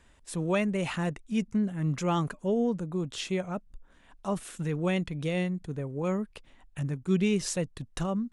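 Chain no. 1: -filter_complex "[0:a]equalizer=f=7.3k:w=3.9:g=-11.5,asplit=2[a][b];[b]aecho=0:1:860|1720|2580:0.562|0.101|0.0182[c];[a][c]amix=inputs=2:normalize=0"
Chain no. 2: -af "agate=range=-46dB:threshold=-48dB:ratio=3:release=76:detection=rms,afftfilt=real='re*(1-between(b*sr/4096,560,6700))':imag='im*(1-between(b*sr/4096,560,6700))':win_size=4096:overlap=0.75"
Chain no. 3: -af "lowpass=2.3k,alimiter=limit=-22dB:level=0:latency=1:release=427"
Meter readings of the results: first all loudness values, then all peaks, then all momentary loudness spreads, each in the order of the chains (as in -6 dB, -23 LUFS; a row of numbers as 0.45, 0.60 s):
-30.0, -31.5, -33.0 LUFS; -15.0, -16.5, -22.0 dBFS; 8, 9, 6 LU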